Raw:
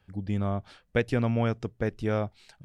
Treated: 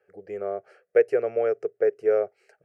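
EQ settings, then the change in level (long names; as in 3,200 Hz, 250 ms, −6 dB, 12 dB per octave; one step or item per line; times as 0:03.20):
high-pass with resonance 420 Hz, resonance Q 4.9
high-shelf EQ 4,300 Hz −10 dB
phaser with its sweep stopped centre 980 Hz, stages 6
0.0 dB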